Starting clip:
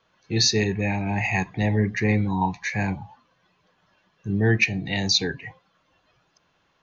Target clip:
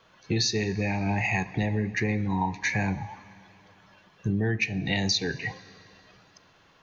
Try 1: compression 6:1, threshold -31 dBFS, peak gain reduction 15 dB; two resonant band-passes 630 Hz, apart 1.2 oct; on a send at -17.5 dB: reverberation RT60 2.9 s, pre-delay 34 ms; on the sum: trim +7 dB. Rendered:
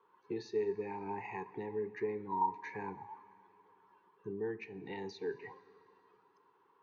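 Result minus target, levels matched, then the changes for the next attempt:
500 Hz band +8.5 dB
remove: two resonant band-passes 630 Hz, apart 1.2 oct

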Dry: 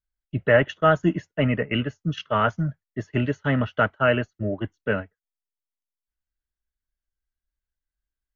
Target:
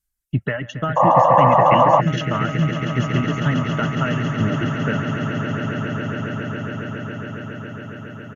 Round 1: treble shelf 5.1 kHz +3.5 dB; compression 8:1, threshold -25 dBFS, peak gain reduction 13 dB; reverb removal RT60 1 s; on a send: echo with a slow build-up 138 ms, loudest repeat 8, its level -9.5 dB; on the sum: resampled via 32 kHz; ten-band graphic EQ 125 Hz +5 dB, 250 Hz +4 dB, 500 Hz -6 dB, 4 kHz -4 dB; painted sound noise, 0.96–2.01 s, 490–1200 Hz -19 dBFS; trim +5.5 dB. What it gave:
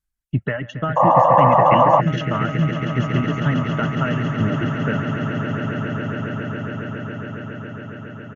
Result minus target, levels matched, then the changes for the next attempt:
8 kHz band -6.5 dB
change: treble shelf 5.1 kHz +14.5 dB

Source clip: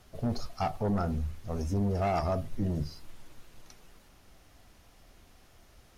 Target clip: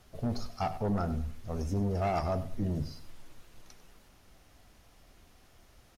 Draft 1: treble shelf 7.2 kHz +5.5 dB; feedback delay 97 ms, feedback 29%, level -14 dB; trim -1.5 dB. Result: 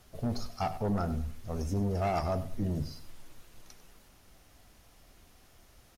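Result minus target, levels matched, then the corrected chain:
8 kHz band +2.5 dB
feedback delay 97 ms, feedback 29%, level -14 dB; trim -1.5 dB

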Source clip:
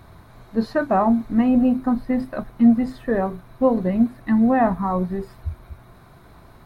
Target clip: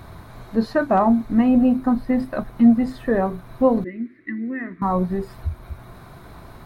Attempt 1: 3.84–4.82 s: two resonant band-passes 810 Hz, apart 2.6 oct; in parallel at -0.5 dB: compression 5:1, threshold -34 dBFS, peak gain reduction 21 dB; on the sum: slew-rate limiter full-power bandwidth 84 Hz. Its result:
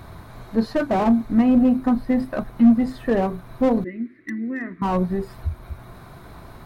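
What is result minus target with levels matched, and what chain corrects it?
slew-rate limiter: distortion +36 dB
3.84–4.82 s: two resonant band-passes 810 Hz, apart 2.6 oct; in parallel at -0.5 dB: compression 5:1, threshold -34 dBFS, peak gain reduction 21 dB; on the sum: slew-rate limiter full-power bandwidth 300.5 Hz

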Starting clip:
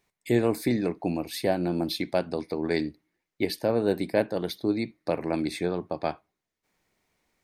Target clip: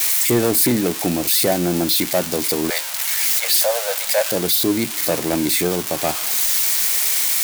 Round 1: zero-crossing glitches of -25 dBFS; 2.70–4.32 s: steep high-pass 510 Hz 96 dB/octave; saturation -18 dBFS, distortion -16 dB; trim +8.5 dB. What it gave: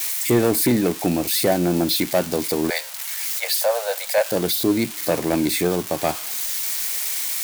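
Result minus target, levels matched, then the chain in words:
zero-crossing glitches: distortion -9 dB
zero-crossing glitches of -16 dBFS; 2.70–4.32 s: steep high-pass 510 Hz 96 dB/octave; saturation -18 dBFS, distortion -16 dB; trim +8.5 dB

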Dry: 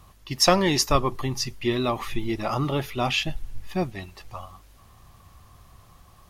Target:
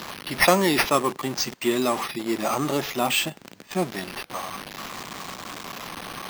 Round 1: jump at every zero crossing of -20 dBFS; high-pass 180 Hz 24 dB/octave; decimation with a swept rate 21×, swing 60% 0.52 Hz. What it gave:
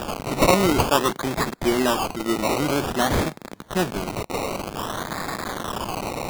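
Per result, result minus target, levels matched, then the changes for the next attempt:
decimation with a swept rate: distortion +9 dB; jump at every zero crossing: distortion +5 dB
change: decimation with a swept rate 5×, swing 60% 0.52 Hz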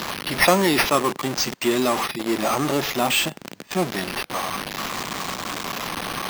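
jump at every zero crossing: distortion +5 dB
change: jump at every zero crossing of -27.5 dBFS

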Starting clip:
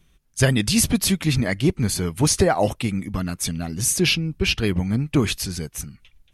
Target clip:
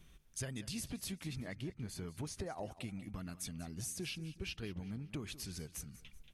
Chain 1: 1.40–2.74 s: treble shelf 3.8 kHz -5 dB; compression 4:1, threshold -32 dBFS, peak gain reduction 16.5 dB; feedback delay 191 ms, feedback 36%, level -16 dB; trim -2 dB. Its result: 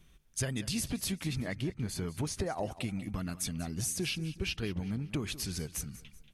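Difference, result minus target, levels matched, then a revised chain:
compression: peak gain reduction -8 dB
1.40–2.74 s: treble shelf 3.8 kHz -5 dB; compression 4:1, threshold -43 dBFS, peak gain reduction 25 dB; feedback delay 191 ms, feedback 36%, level -16 dB; trim -2 dB

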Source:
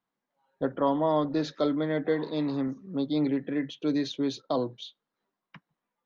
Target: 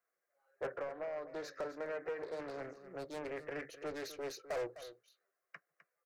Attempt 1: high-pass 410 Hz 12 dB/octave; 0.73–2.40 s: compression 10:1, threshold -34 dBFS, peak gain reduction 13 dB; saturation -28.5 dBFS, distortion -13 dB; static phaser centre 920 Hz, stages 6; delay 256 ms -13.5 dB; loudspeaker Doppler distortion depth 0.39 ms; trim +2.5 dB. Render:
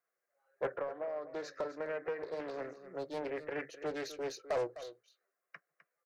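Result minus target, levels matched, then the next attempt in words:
saturation: distortion -6 dB
high-pass 410 Hz 12 dB/octave; 0.73–2.40 s: compression 10:1, threshold -34 dBFS, peak gain reduction 13 dB; saturation -35.5 dBFS, distortion -8 dB; static phaser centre 920 Hz, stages 6; delay 256 ms -13.5 dB; loudspeaker Doppler distortion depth 0.39 ms; trim +2.5 dB

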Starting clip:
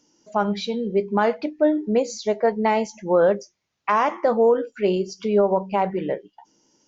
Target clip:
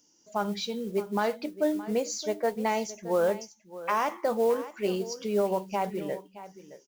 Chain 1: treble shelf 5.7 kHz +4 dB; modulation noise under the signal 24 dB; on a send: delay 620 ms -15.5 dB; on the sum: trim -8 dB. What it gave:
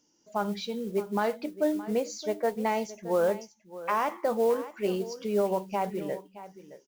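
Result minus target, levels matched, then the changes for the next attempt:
8 kHz band -5.0 dB
change: treble shelf 5.7 kHz +15.5 dB

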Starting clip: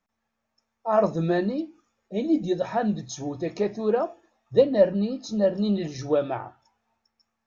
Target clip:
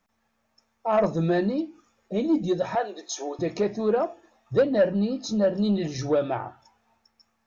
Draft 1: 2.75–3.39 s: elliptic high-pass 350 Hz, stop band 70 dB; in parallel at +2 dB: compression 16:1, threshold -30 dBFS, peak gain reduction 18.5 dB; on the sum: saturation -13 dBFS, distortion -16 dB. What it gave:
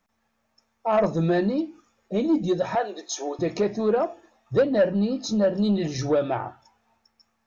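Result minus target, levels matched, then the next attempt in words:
compression: peak gain reduction -7 dB
2.75–3.39 s: elliptic high-pass 350 Hz, stop band 70 dB; in parallel at +2 dB: compression 16:1, threshold -37.5 dBFS, peak gain reduction 25.5 dB; on the sum: saturation -13 dBFS, distortion -16 dB

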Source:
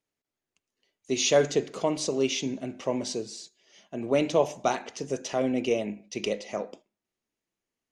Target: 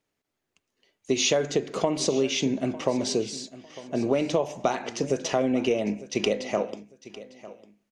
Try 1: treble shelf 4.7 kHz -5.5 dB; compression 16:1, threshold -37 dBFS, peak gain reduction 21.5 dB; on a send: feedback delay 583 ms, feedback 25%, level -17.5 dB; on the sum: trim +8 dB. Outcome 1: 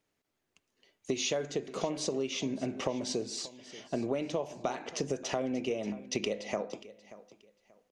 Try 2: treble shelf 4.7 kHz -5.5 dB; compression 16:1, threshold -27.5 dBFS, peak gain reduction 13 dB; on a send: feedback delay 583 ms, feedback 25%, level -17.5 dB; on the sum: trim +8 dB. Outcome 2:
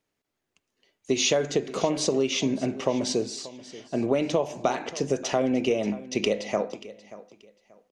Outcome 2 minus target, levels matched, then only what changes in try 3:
echo 319 ms early
change: feedback delay 902 ms, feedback 25%, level -17.5 dB

